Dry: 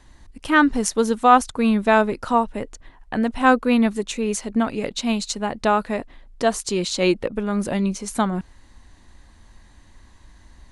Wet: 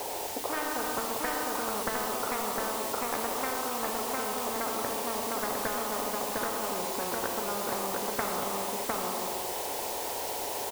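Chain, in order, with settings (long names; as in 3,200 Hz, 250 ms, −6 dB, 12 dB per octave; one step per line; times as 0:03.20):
adaptive Wiener filter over 15 samples
Chebyshev band-pass filter 420–870 Hz, order 3
notch filter 620 Hz, Q 12
downward compressor 12 to 1, threshold −31 dBFS, peak gain reduction 18.5 dB
bit-depth reduction 12 bits, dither triangular
on a send: single-tap delay 706 ms −4 dB
on the sum: reverb whose tail is shaped and stops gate 470 ms falling, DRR 3 dB
every bin compressed towards the loudest bin 10 to 1
level +6 dB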